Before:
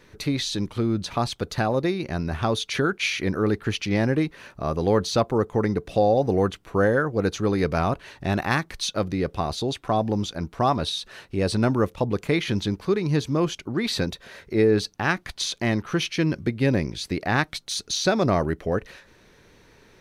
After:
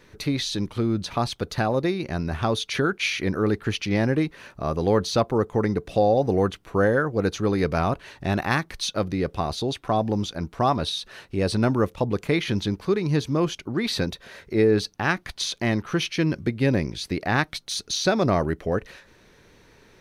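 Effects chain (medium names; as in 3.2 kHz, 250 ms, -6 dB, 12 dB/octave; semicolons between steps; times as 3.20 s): dynamic bell 7.5 kHz, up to -4 dB, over -56 dBFS, Q 4.7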